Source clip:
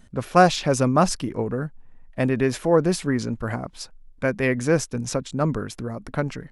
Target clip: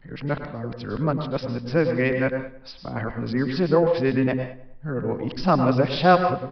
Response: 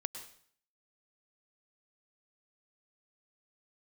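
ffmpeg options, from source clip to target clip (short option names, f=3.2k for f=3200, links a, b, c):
-filter_complex "[0:a]areverse[a];[1:a]atrim=start_sample=2205,afade=t=out:st=0.27:d=0.01,atrim=end_sample=12348[b];[a][b]afir=irnorm=-1:irlink=0,aresample=11025,aresample=44100,asplit=2[c][d];[d]adelay=102,lowpass=f=3.2k:p=1,volume=-16dB,asplit=2[e][f];[f]adelay=102,lowpass=f=3.2k:p=1,volume=0.45,asplit=2[g][h];[h]adelay=102,lowpass=f=3.2k:p=1,volume=0.45,asplit=2[i][j];[j]adelay=102,lowpass=f=3.2k:p=1,volume=0.45[k];[c][e][g][i][k]amix=inputs=5:normalize=0"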